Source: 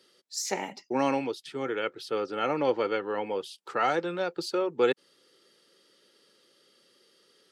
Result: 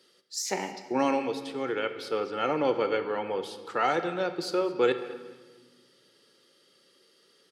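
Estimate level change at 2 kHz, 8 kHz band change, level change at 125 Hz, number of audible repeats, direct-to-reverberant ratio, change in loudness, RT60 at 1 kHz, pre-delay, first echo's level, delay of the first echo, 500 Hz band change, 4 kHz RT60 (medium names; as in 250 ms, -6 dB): +0.5 dB, 0.0 dB, 0.0 dB, 2, 8.0 dB, +0.5 dB, 1.4 s, 11 ms, -20.0 dB, 217 ms, +0.5 dB, 1.2 s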